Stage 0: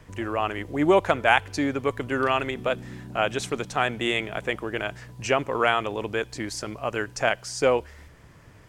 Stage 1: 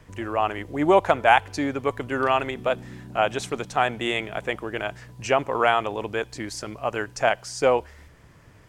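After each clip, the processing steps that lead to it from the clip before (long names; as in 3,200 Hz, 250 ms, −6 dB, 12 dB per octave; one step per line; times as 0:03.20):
dynamic equaliser 800 Hz, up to +6 dB, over −35 dBFS, Q 1.5
level −1 dB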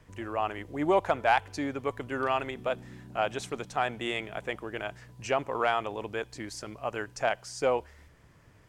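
soft clipping −3.5 dBFS, distortion −25 dB
level −6.5 dB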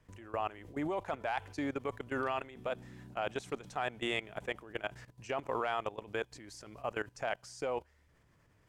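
output level in coarse steps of 17 dB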